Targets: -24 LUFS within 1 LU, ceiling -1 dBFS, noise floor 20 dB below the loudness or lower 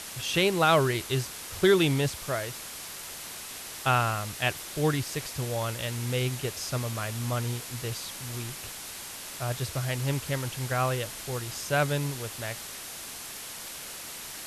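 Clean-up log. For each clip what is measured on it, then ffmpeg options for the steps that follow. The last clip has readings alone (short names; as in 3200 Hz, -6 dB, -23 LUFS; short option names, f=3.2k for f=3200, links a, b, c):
noise floor -41 dBFS; noise floor target -50 dBFS; loudness -29.5 LUFS; peak -11.0 dBFS; loudness target -24.0 LUFS
-> -af "afftdn=nr=9:nf=-41"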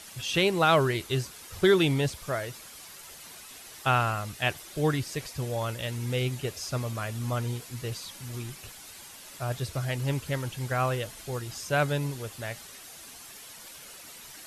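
noise floor -47 dBFS; noise floor target -49 dBFS
-> -af "afftdn=nr=6:nf=-47"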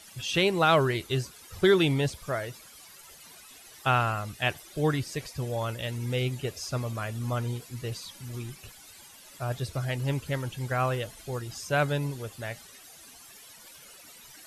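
noise floor -51 dBFS; loudness -29.0 LUFS; peak -10.5 dBFS; loudness target -24.0 LUFS
-> -af "volume=5dB"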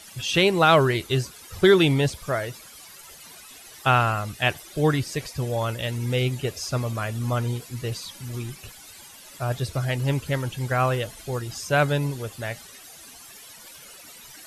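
loudness -24.0 LUFS; peak -5.5 dBFS; noise floor -46 dBFS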